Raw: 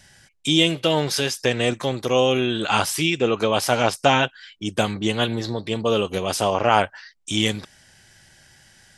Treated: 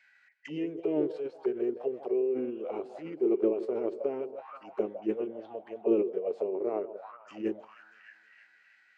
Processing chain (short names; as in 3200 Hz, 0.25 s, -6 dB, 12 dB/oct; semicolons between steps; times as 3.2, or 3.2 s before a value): HPF 160 Hz 12 dB/oct; bell 10000 Hz -4.5 dB 2.6 oct; in parallel at 0 dB: compressor 5:1, threshold -31 dBFS, peak gain reduction 17 dB; on the sum: echo with dull and thin repeats by turns 0.159 s, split 1100 Hz, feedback 72%, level -13 dB; auto-wah 440–2500 Hz, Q 9.5, down, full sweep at -16.5 dBFS; formant shift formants -3 st